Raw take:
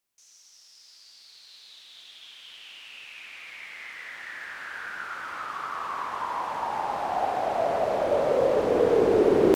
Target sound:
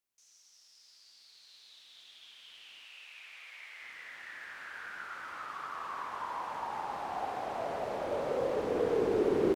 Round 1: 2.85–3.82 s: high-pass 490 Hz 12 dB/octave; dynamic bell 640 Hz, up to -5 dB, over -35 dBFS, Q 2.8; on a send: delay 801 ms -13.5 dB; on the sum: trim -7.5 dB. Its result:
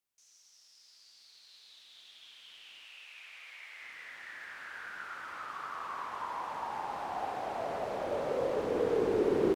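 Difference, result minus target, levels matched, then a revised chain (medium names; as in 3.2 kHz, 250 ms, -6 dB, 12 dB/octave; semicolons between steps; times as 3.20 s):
echo 342 ms early
2.85–3.82 s: high-pass 490 Hz 12 dB/octave; dynamic bell 640 Hz, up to -5 dB, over -35 dBFS, Q 2.8; on a send: delay 1143 ms -13.5 dB; on the sum: trim -7.5 dB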